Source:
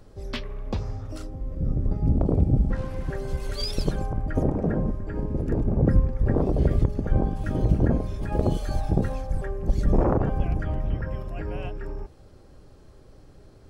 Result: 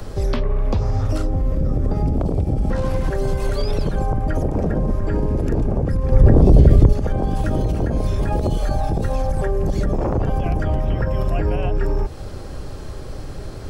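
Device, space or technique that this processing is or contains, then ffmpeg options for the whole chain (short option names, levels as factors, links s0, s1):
mastering chain: -filter_complex "[0:a]equalizer=f=280:t=o:w=2.1:g=-3.5,acrossover=split=99|290|1100|2800[s0][s1][s2][s3][s4];[s0]acompressor=threshold=0.0224:ratio=4[s5];[s1]acompressor=threshold=0.0112:ratio=4[s6];[s2]acompressor=threshold=0.0126:ratio=4[s7];[s3]acompressor=threshold=0.00112:ratio=4[s8];[s4]acompressor=threshold=0.00112:ratio=4[s9];[s5][s6][s7][s8][s9]amix=inputs=5:normalize=0,acompressor=threshold=0.01:ratio=1.5,alimiter=level_in=33.5:limit=0.891:release=50:level=0:latency=1,asettb=1/sr,asplit=3[s10][s11][s12];[s10]atrim=end=6.124[s13];[s11]atrim=start=6.12:end=6.93,asetpts=PTS-STARTPTS,afade=t=in:d=0.004:c=qsin,afade=t=out:st=0.806:d=0.004:c=qsin,lowshelf=f=480:g=10.5[s14];[s12]atrim=start=6.926[s15];[s13][s14]acrossfade=d=0.004:c1=hsin:c2=qsin[s16];[s16][s15]acrossfade=d=0.004:c1=qsin:c2=hsin,volume=0.299"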